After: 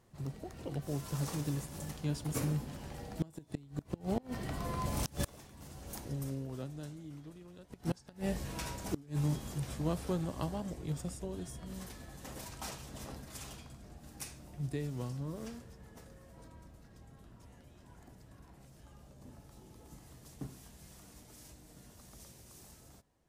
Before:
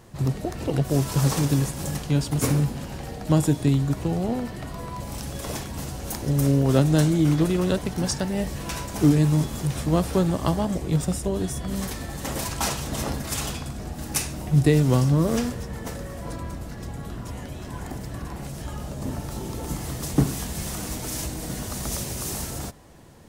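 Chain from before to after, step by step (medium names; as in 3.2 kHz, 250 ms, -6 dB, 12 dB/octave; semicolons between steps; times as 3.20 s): Doppler pass-by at 5.96 s, 10 m/s, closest 2 m; inverted gate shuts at -34 dBFS, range -26 dB; trim +13 dB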